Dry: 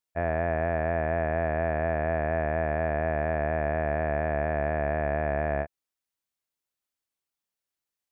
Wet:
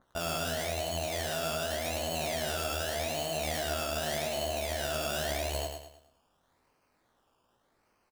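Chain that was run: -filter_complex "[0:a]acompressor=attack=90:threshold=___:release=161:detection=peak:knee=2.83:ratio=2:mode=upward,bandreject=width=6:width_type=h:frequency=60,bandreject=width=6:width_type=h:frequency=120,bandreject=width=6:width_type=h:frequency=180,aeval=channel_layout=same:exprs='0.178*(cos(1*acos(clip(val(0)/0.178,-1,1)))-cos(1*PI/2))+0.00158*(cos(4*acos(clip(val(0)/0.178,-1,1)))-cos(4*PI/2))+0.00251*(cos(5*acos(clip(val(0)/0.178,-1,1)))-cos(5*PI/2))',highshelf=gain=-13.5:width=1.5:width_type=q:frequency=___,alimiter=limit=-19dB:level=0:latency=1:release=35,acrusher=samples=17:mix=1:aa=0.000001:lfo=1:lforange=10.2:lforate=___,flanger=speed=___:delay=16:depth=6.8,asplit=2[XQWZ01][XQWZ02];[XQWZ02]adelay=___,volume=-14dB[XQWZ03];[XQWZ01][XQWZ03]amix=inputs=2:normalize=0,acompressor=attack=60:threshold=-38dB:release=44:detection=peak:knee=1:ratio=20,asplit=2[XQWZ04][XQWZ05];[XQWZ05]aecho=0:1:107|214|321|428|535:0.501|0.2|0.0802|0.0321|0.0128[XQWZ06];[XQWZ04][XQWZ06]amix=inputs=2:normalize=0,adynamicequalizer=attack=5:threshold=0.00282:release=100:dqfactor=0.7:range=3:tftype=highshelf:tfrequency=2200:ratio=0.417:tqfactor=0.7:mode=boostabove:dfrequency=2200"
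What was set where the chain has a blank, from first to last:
-38dB, 1.6k, 0.85, 0.54, 24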